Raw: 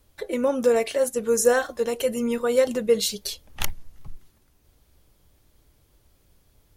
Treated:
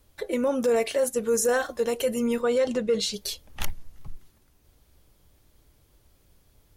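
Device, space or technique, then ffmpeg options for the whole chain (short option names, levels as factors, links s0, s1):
soft clipper into limiter: -filter_complex "[0:a]asoftclip=type=tanh:threshold=0.398,alimiter=limit=0.158:level=0:latency=1:release=12,asettb=1/sr,asplit=3[s0][s1][s2];[s0]atrim=end=2.414[s3];[s1]atrim=start=2.41:end=3.14,asetpts=PTS-STARTPTS,afade=t=in:d=0.004:c=qsin,afade=t=out:st=0.726:d=0.004:c=qsin,lowpass=6700[s4];[s2]atrim=start=3.136[s5];[s3][s4]acrossfade=d=0.004:c1=hsin:c2=qsin[s6];[s6][s5]acrossfade=d=0.004:c1=qsin:c2=hsin"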